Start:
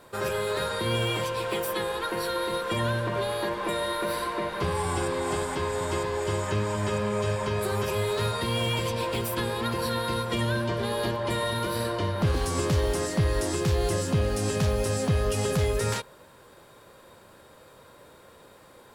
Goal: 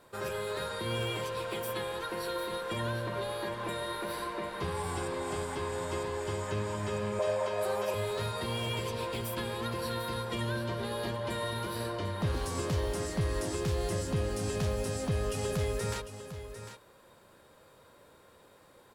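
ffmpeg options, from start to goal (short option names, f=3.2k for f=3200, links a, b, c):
-filter_complex "[0:a]asettb=1/sr,asplit=3[a][b][c];[a]atrim=end=7.194[d];[b]atrim=start=7.19:end=7.94,asetpts=PTS-STARTPTS,afade=t=in:d=0.004:c=qsin,afade=t=out:st=0.746:d=0.004:c=qsin,highpass=f=580:t=q:w=3.7[e];[c]atrim=start=7.936[f];[d][e]acrossfade=d=0.004:c1=hsin:c2=qsin[g];[g][f]acrossfade=d=0.004:c1=qsin:c2=hsin,aecho=1:1:750:0.282,volume=-7dB"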